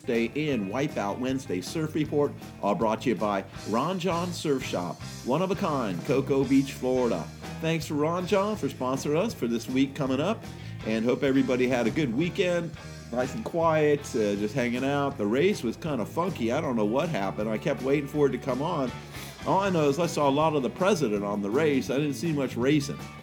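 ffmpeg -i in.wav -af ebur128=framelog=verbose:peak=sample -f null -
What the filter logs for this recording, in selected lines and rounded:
Integrated loudness:
  I:         -27.2 LUFS
  Threshold: -37.3 LUFS
Loudness range:
  LRA:         2.5 LU
  Threshold: -47.3 LUFS
  LRA low:   -28.5 LUFS
  LRA high:  -26.0 LUFS
Sample peak:
  Peak:      -10.2 dBFS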